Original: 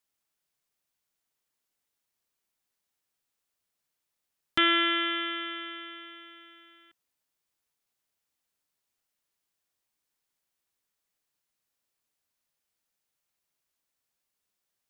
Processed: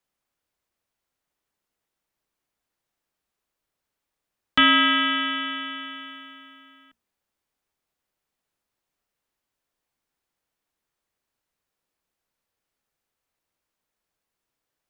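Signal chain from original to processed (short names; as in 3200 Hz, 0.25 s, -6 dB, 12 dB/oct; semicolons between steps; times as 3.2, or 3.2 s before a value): notches 60/120/180/240/300 Hz; frequency shift -65 Hz; mismatched tape noise reduction decoder only; gain +6.5 dB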